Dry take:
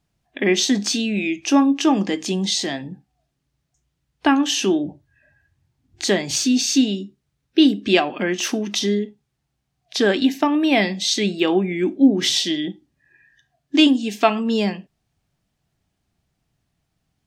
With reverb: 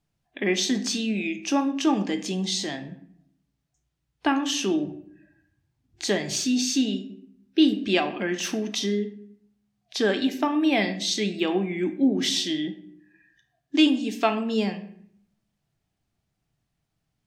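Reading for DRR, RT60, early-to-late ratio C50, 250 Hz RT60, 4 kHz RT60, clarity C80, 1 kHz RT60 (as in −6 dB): 8.0 dB, 0.65 s, 12.5 dB, 0.95 s, 0.45 s, 15.5 dB, 0.60 s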